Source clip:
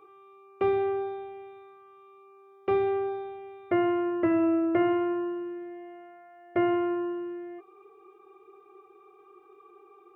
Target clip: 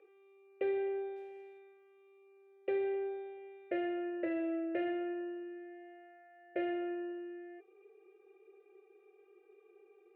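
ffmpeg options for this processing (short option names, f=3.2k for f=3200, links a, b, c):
-filter_complex "[0:a]asettb=1/sr,asplit=3[a][b][c];[a]atrim=end=1.164[d];[b]atrim=start=1.16:end=1.59,asetpts=PTS-STARTPTS,afade=t=in:d=0.004:c=qsin,afade=t=out:st=0.426:d=0.004:c=qsin,acrusher=bits=6:mode=log:mix=0:aa=0.000001[e];[c]atrim=start=1.586[f];[d][e]acrossfade=d=0.004:c1=hsin:c2=qsin[g];[g][f]acrossfade=d=0.004:c1=qsin:c2=hsin,asoftclip=type=tanh:threshold=-19.5dB,asplit=3[h][i][j];[h]bandpass=f=530:t=q:w=8,volume=0dB[k];[i]bandpass=f=1.84k:t=q:w=8,volume=-6dB[l];[j]bandpass=f=2.48k:t=q:w=8,volume=-9dB[m];[k][l][m]amix=inputs=3:normalize=0,volume=6.5dB"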